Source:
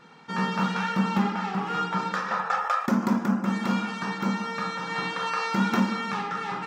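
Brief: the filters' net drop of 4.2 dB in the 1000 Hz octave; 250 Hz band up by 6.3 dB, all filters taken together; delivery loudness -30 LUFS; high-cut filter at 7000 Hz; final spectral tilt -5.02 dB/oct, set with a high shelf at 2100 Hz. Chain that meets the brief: LPF 7000 Hz; bell 250 Hz +8.5 dB; bell 1000 Hz -8.5 dB; high shelf 2100 Hz +7 dB; gain -6.5 dB

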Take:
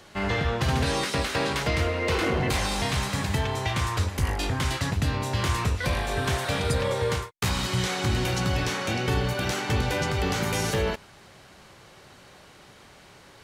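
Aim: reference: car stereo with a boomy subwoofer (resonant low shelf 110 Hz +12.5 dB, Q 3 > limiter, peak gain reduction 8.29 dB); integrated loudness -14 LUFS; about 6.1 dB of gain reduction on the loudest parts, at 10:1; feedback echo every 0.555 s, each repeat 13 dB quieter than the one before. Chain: compressor 10:1, threshold -26 dBFS; resonant low shelf 110 Hz +12.5 dB, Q 3; feedback echo 0.555 s, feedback 22%, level -13 dB; gain +10 dB; limiter -4 dBFS

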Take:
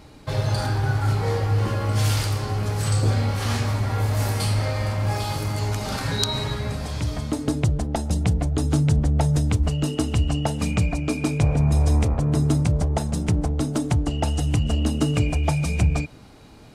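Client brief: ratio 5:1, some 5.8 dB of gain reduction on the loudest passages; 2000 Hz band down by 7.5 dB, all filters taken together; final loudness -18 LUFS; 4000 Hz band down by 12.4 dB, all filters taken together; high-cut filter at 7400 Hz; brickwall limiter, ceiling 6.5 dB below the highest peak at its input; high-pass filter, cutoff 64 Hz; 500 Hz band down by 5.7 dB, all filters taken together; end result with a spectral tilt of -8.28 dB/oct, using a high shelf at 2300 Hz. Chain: HPF 64 Hz; LPF 7400 Hz; bell 500 Hz -6.5 dB; bell 2000 Hz -3 dB; high shelf 2300 Hz -9 dB; bell 4000 Hz -6 dB; compressor 5:1, threshold -23 dBFS; gain +11.5 dB; limiter -9.5 dBFS

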